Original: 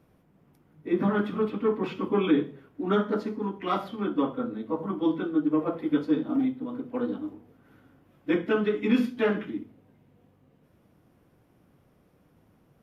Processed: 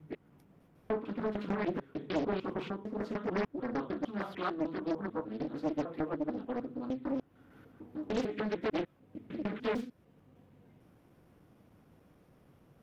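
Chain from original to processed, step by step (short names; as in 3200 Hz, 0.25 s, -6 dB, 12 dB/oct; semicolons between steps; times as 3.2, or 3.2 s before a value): slices in reverse order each 0.15 s, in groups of 6; compressor 1.5:1, threshold -44 dBFS, peak gain reduction 9.5 dB; Doppler distortion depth 0.99 ms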